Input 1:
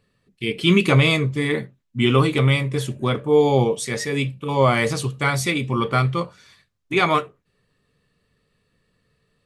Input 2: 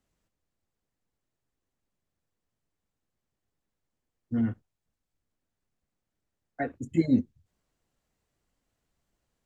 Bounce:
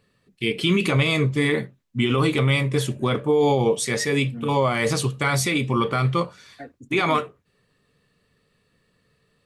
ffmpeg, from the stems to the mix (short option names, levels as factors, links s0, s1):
-filter_complex "[0:a]lowshelf=f=76:g=-7,volume=1.33[s0];[1:a]volume=0.398[s1];[s0][s1]amix=inputs=2:normalize=0,alimiter=limit=0.282:level=0:latency=1:release=53"